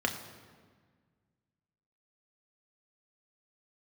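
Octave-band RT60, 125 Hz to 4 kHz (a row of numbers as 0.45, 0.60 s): 2.4, 2.1, 1.7, 1.6, 1.4, 1.1 s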